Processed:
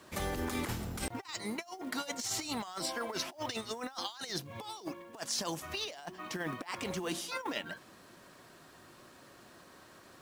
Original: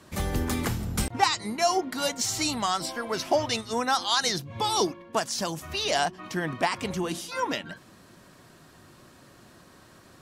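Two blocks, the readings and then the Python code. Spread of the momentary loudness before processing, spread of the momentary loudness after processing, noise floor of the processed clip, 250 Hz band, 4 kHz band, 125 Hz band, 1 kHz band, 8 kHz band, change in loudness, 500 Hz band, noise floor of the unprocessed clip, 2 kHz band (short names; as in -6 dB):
6 LU, 21 LU, -57 dBFS, -8.0 dB, -10.0 dB, -10.5 dB, -14.0 dB, -8.5 dB, -10.5 dB, -11.5 dB, -54 dBFS, -9.0 dB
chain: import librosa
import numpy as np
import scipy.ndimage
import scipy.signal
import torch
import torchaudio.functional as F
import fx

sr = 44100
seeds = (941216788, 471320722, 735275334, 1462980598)

y = fx.bass_treble(x, sr, bass_db=-8, treble_db=-2)
y = fx.over_compress(y, sr, threshold_db=-32.0, ratio=-0.5)
y = fx.quant_companded(y, sr, bits=6)
y = y * librosa.db_to_amplitude(-5.5)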